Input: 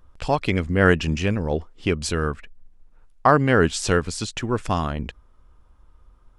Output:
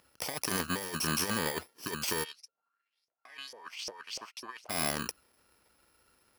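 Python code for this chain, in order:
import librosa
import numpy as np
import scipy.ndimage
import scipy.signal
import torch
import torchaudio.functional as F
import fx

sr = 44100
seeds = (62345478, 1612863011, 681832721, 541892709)

y = fx.bit_reversed(x, sr, seeds[0], block=32)
y = np.clip(10.0 ** (19.5 / 20.0) * y, -1.0, 1.0) / 10.0 ** (19.5 / 20.0)
y = fx.weighting(y, sr, curve='A')
y = fx.over_compress(y, sr, threshold_db=-32.0, ratio=-0.5)
y = fx.filter_lfo_bandpass(y, sr, shape='saw_up', hz=fx.line((2.23, 1.2), (4.69, 5.0)), low_hz=520.0, high_hz=6000.0, q=3.6, at=(2.23, 4.69), fade=0.02)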